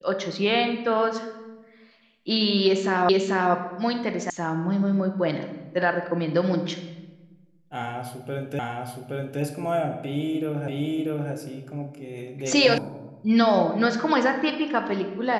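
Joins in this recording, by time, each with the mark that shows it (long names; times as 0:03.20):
0:03.09: the same again, the last 0.44 s
0:04.30: cut off before it has died away
0:08.59: the same again, the last 0.82 s
0:10.68: the same again, the last 0.64 s
0:12.78: cut off before it has died away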